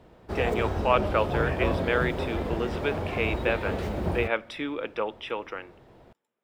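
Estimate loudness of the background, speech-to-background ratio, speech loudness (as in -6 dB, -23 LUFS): -30.5 LUFS, 0.5 dB, -30.0 LUFS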